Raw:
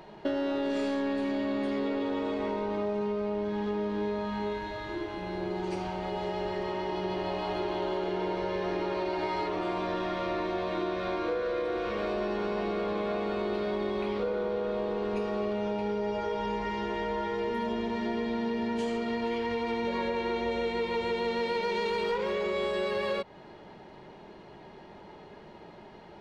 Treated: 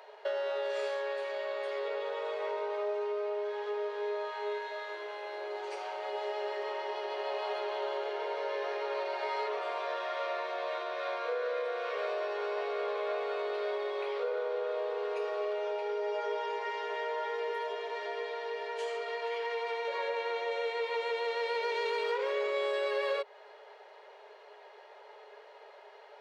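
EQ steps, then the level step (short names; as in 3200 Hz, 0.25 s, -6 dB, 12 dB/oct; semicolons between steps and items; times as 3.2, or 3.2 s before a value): rippled Chebyshev high-pass 410 Hz, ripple 3 dB; 0.0 dB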